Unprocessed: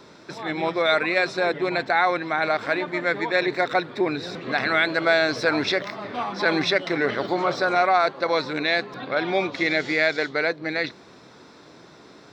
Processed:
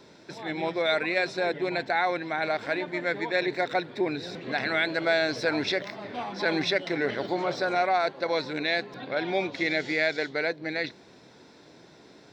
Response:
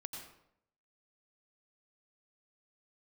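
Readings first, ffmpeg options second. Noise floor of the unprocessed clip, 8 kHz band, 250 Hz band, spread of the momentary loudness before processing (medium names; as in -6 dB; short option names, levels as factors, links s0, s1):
-49 dBFS, -4.0 dB, -4.0 dB, 7 LU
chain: -af "equalizer=f=1200:w=4.1:g=-9.5,volume=0.631"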